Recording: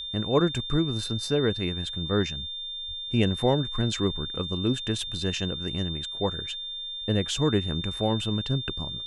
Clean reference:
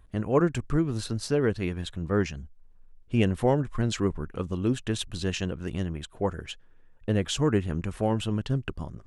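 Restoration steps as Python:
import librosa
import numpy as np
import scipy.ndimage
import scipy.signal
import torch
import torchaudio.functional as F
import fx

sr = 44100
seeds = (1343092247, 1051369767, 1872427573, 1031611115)

y = fx.notch(x, sr, hz=3600.0, q=30.0)
y = fx.fix_deplosive(y, sr, at_s=(2.87,))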